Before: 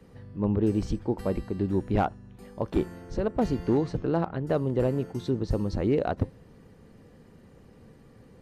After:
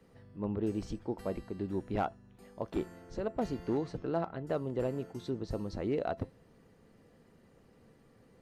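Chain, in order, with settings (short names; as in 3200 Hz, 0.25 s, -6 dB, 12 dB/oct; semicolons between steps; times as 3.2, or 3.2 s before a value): low shelf 170 Hz -7 dB; resonator 670 Hz, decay 0.16 s, harmonics all, mix 60%; gain +1 dB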